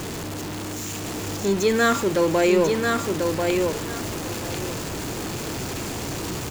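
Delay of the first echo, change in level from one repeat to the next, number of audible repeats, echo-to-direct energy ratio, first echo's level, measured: 1.041 s, -14.5 dB, 2, -4.0 dB, -4.0 dB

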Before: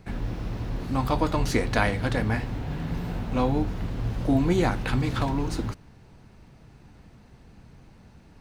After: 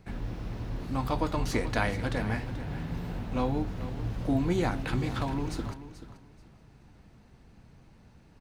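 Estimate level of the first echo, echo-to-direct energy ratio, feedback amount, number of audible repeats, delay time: -13.5 dB, -13.5 dB, 23%, 2, 0.433 s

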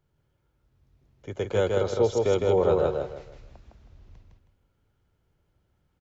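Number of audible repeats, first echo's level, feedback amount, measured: 4, -3.0 dB, 30%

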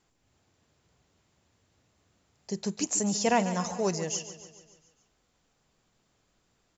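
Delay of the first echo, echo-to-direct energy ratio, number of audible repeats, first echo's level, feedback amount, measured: 0.143 s, -11.5 dB, 5, -13.0 dB, 56%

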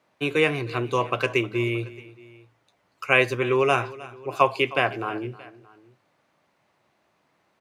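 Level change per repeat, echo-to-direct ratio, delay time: -4.5 dB, -17.5 dB, 0.312 s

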